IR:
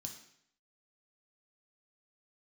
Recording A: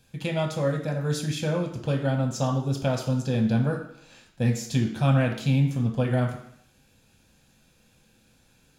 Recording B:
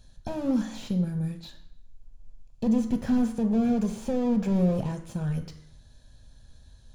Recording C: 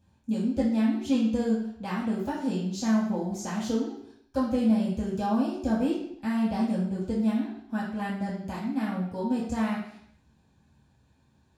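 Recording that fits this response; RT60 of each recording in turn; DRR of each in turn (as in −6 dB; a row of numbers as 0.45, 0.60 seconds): A; 0.70, 0.70, 0.70 seconds; 1.0, 6.0, −8.0 decibels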